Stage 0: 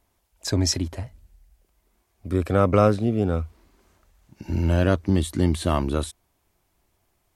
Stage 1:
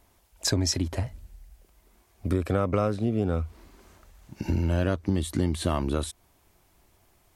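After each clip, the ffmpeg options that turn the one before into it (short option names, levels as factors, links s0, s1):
-af "acompressor=threshold=0.0316:ratio=4,volume=2.11"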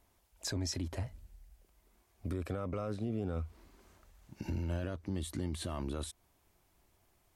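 -af "alimiter=limit=0.1:level=0:latency=1:release=11,volume=0.398"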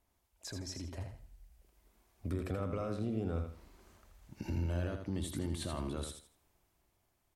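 -filter_complex "[0:a]dynaudnorm=f=210:g=13:m=2.24,asplit=2[s0][s1];[s1]aecho=0:1:81|162|243|324:0.473|0.132|0.0371|0.0104[s2];[s0][s2]amix=inputs=2:normalize=0,volume=0.422"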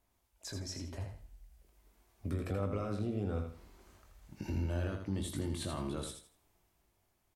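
-filter_complex "[0:a]asplit=2[s0][s1];[s1]adelay=20,volume=0.447[s2];[s0][s2]amix=inputs=2:normalize=0"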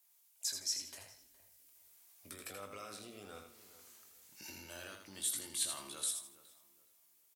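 -filter_complex "[0:a]aderivative,asplit=2[s0][s1];[s1]adelay=417,lowpass=f=1600:p=1,volume=0.178,asplit=2[s2][s3];[s3]adelay=417,lowpass=f=1600:p=1,volume=0.31,asplit=2[s4][s5];[s5]adelay=417,lowpass=f=1600:p=1,volume=0.31[s6];[s0][s2][s4][s6]amix=inputs=4:normalize=0,volume=3.35"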